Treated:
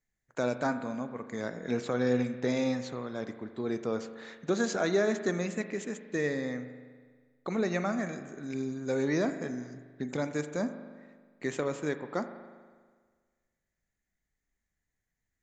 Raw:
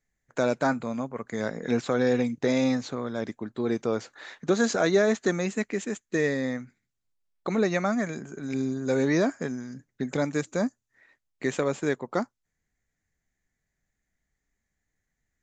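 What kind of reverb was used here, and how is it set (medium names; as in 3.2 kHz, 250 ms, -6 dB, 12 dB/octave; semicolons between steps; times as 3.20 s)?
spring tank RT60 1.6 s, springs 40 ms, chirp 50 ms, DRR 9.5 dB; trim -5.5 dB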